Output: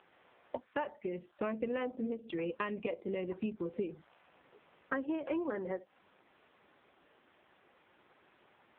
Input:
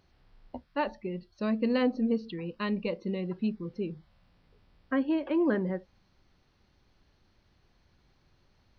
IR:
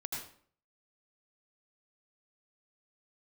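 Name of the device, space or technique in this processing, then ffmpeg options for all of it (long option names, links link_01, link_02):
voicemail: -filter_complex "[0:a]asettb=1/sr,asplit=3[link_01][link_02][link_03];[link_01]atrim=end=3.924[link_04];[link_02]atrim=start=3.92:end=5.09,asetpts=PTS-STARTPTS,afade=type=in:duration=0.004:curve=qsin,afade=type=out:start_time=1.166:duration=0.004:curve=qsin,adynamicequalizer=threshold=0.00126:dfrequency=2900:dqfactor=2.1:tfrequency=2900:tqfactor=2.1:attack=5:release=100:ratio=0.375:range=3:mode=cutabove:tftype=bell[link_05];[link_03]atrim=start=5.086[link_06];[link_04][link_05]acrossfade=duration=0.004:curve1=hsin:curve2=qsin[link_07];[link_07][link_06]acrossfade=duration=0.004:curve1=qsin:curve2=hsin,highpass=390,lowpass=3100,acompressor=threshold=-44dB:ratio=10,volume=12dB" -ar 8000 -c:a libopencore_amrnb -b:a 5900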